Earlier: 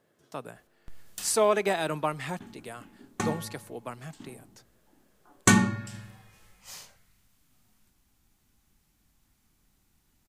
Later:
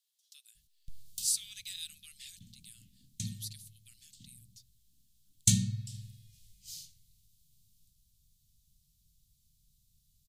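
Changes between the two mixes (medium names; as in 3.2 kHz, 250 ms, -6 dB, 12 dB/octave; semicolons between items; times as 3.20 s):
speech: add steep high-pass 540 Hz 72 dB/octave; master: add elliptic band-stop 150–3700 Hz, stop band 80 dB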